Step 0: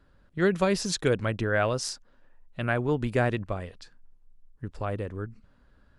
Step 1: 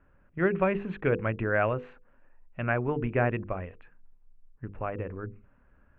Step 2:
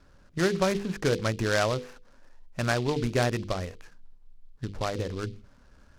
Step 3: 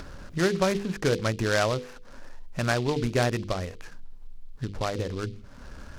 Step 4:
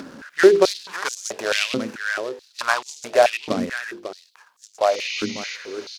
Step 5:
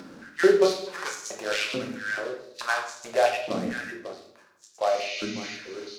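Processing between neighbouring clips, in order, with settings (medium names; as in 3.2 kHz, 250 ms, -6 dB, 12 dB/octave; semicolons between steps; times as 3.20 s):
elliptic low-pass 2.6 kHz, stop band 50 dB; hum notches 50/100/150/200/250/300/350/400/450/500 Hz
compression 1.5:1, threshold -35 dBFS, peak gain reduction 5.5 dB; delay time shaken by noise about 3.4 kHz, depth 0.055 ms; trim +5.5 dB
upward compressor, threshold -29 dBFS; trim +1 dB
spectral replace 4.92–5.53 s, 1.9–7 kHz before; delay 547 ms -10 dB; step-sequenced high-pass 4.6 Hz 240–6700 Hz; trim +3.5 dB
reverberation RT60 0.75 s, pre-delay 6 ms, DRR 1 dB; trim -8 dB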